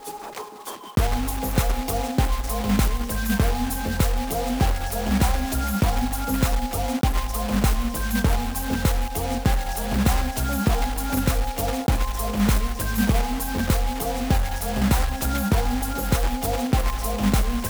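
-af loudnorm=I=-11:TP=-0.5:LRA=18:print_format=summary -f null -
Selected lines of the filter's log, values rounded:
Input Integrated:    -24.0 LUFS
Input True Peak:      -7.4 dBTP
Input LRA:             0.7 LU
Input Threshold:     -34.1 LUFS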